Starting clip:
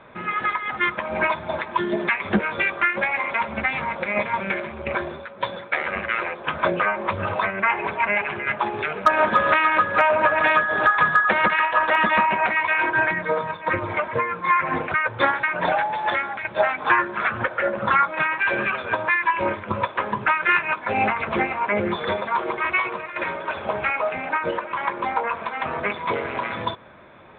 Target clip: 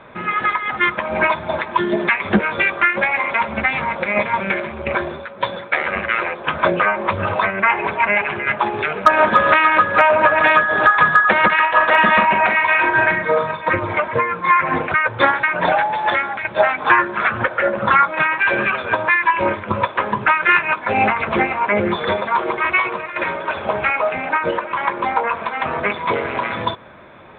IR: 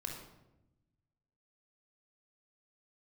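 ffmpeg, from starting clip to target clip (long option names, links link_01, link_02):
-filter_complex "[0:a]asettb=1/sr,asplit=3[link_01][link_02][link_03];[link_01]atrim=end=11.684[link_04];[link_02]atrim=start=11.68:end=13.71,asetpts=PTS-STARTPTS,afade=type=in:duration=0.004:curve=qsin,afade=type=out:start_time=2.026:duration=0.004:curve=qsin,asplit=2[link_05][link_06];[link_06]adelay=43,volume=-6.5dB[link_07];[link_05][link_07]amix=inputs=2:normalize=0,atrim=end_sample=89523[link_08];[link_03]atrim=start=13.706[link_09];[link_04][link_08]acrossfade=duration=0.004:curve1=hsin:curve2=qsin[link_10];[link_10][link_09]acrossfade=duration=0.004:curve1=qsin:curve2=hsin,volume=5dB"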